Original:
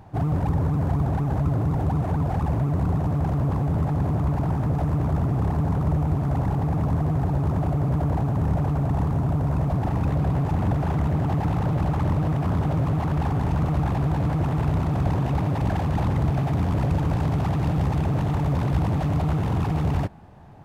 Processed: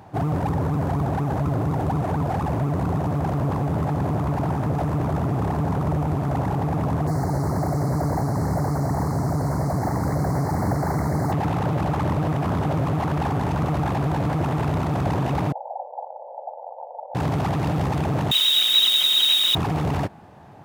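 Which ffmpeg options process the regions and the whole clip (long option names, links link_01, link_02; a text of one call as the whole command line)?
ffmpeg -i in.wav -filter_complex "[0:a]asettb=1/sr,asplit=3[link_01][link_02][link_03];[link_01]atrim=end=7.074[link_04];[link_02]atrim=start=7.07:end=11.32,asetpts=PTS-STARTPTS,afade=type=in:duration=0.004:curve=qsin,afade=type=out:start_time=4.246:duration=0.004:curve=qsin,acrusher=bits=6:mix=0:aa=0.5,asuperstop=centerf=3000:order=12:qfactor=1.6[link_05];[link_03]atrim=start=11.316[link_06];[link_04][link_05]acrossfade=duration=0.004:curve1=hsin:curve2=qsin[link_07];[link_07][link_06]acrossfade=duration=0.004:curve1=qsin:curve2=hsin,asettb=1/sr,asplit=3[link_08][link_09][link_10];[link_08]atrim=end=15.524[link_11];[link_09]atrim=start=15.52:end=17.15,asetpts=PTS-STARTPTS,afade=type=in:duration=0.004:curve=qsin,afade=type=out:start_time=1.626:duration=0.004:curve=qsin,volume=27.5dB,asoftclip=hard,volume=-27.5dB,asuperpass=centerf=680:order=12:qfactor=1.7[link_12];[link_10]atrim=start=17.146[link_13];[link_11][link_12]acrossfade=duration=0.004:curve1=hsin:curve2=qsin[link_14];[link_14][link_13]acrossfade=duration=0.004:curve1=qsin:curve2=hsin,asettb=1/sr,asplit=3[link_15][link_16][link_17];[link_15]atrim=end=18.314[link_18];[link_16]atrim=start=18.31:end=19.55,asetpts=PTS-STARTPTS,afade=type=in:duration=0.004:curve=qsin,afade=type=out:start_time=1.236:duration=0.004:curve=qsin,aecho=1:1:4.2:0.6,atrim=end_sample=54684,lowpass=frequency=3300:width_type=q:width=0.5098,lowpass=frequency=3300:width_type=q:width=0.6013,lowpass=frequency=3300:width_type=q:width=0.9,lowpass=frequency=3300:width_type=q:width=2.563,afreqshift=-3900,acrusher=bits=6:dc=4:mix=0:aa=0.000001[link_19];[link_17]atrim=start=19.546[link_20];[link_18][link_19]acrossfade=duration=0.004:curve1=hsin:curve2=qsin[link_21];[link_21][link_20]acrossfade=duration=0.004:curve1=qsin:curve2=hsin,highpass=85,bass=frequency=250:gain=-5,treble=frequency=4000:gain=1,volume=4.5dB" out.wav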